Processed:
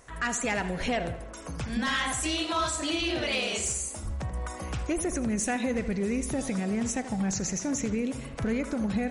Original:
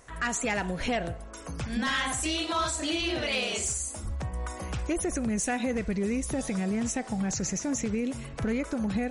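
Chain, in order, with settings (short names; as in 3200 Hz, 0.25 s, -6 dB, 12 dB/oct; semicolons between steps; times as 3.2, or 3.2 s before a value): tape echo 80 ms, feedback 68%, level -11 dB, low-pass 4000 Hz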